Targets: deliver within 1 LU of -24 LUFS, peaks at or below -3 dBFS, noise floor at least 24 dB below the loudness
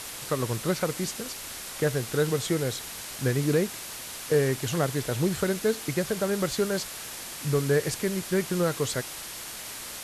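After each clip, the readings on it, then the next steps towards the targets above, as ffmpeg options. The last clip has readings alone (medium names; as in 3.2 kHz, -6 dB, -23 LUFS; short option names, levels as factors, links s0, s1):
noise floor -39 dBFS; noise floor target -53 dBFS; loudness -28.5 LUFS; peak level -12.5 dBFS; loudness target -24.0 LUFS
-> -af "afftdn=nr=14:nf=-39"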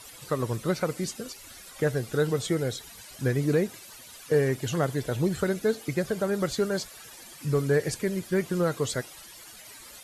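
noise floor -47 dBFS; noise floor target -52 dBFS
-> -af "afftdn=nr=6:nf=-47"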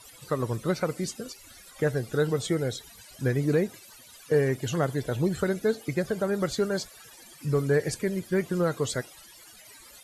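noise floor -51 dBFS; noise floor target -52 dBFS
-> -af "afftdn=nr=6:nf=-51"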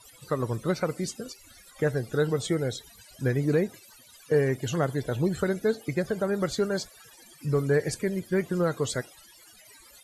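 noise floor -54 dBFS; loudness -28.0 LUFS; peak level -13.0 dBFS; loudness target -24.0 LUFS
-> -af "volume=1.58"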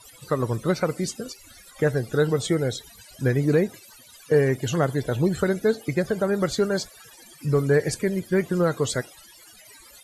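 loudness -24.5 LUFS; peak level -9.0 dBFS; noise floor -50 dBFS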